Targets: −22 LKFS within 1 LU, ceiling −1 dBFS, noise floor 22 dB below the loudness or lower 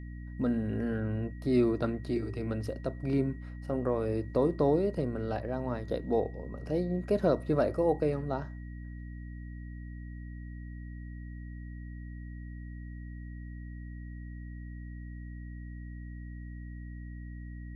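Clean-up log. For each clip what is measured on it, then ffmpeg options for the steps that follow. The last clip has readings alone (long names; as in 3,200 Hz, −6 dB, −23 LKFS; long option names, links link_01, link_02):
mains hum 60 Hz; hum harmonics up to 300 Hz; level of the hum −40 dBFS; interfering tone 1,900 Hz; level of the tone −57 dBFS; integrated loudness −31.5 LKFS; sample peak −14.0 dBFS; target loudness −22.0 LKFS
→ -af "bandreject=frequency=60:width_type=h:width=4,bandreject=frequency=120:width_type=h:width=4,bandreject=frequency=180:width_type=h:width=4,bandreject=frequency=240:width_type=h:width=4,bandreject=frequency=300:width_type=h:width=4"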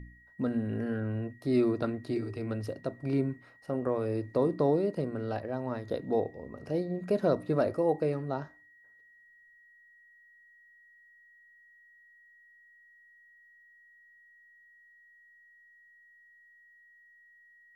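mains hum none found; interfering tone 1,900 Hz; level of the tone −57 dBFS
→ -af "bandreject=frequency=1900:width=30"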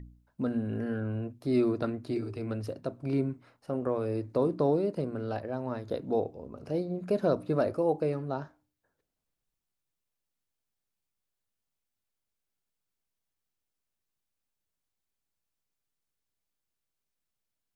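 interfering tone none found; integrated loudness −31.5 LKFS; sample peak −15.0 dBFS; target loudness −22.0 LKFS
→ -af "volume=9.5dB"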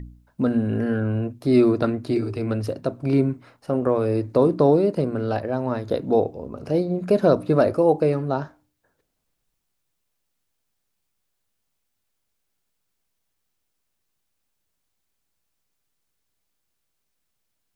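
integrated loudness −22.0 LKFS; sample peak −5.5 dBFS; background noise floor −76 dBFS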